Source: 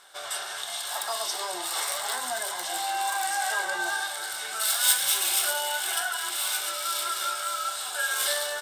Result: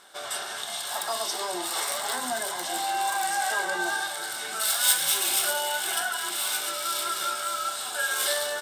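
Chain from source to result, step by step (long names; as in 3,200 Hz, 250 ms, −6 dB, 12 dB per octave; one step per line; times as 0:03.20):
parametric band 230 Hz +12 dB 1.5 octaves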